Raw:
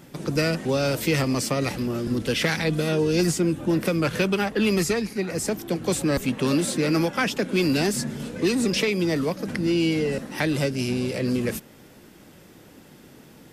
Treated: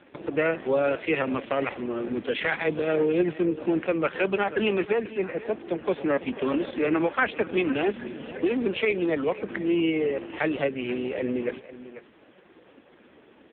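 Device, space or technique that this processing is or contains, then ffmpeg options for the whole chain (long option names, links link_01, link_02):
satellite phone: -af "highpass=350,lowpass=3300,aecho=1:1:490:0.178,volume=2.5dB" -ar 8000 -c:a libopencore_amrnb -b:a 4750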